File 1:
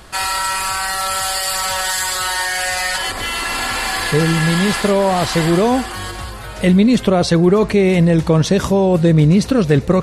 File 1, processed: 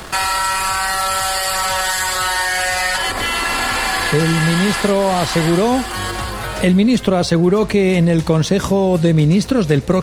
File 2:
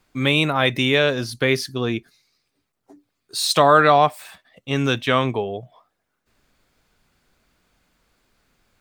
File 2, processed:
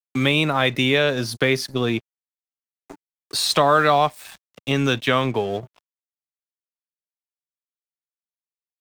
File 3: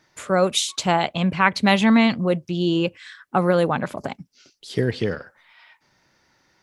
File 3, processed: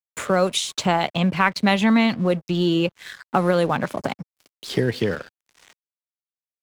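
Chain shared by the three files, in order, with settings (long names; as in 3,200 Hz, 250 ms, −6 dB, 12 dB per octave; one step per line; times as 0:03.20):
in parallel at 0 dB: downward compressor 8 to 1, threshold −27 dBFS
on the sum: dead-zone distortion −40.5 dBFS
multiband upward and downward compressor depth 40%
level −2 dB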